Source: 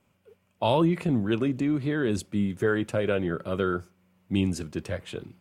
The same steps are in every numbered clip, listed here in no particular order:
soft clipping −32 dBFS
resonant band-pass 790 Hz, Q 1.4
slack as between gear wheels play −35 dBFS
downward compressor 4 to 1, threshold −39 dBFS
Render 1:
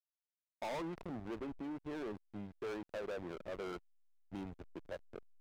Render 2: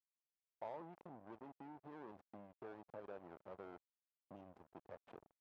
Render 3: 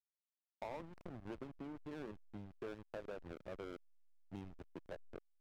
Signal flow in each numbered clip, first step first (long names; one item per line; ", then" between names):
resonant band-pass, then soft clipping, then slack as between gear wheels, then downward compressor
downward compressor, then soft clipping, then slack as between gear wheels, then resonant band-pass
resonant band-pass, then downward compressor, then soft clipping, then slack as between gear wheels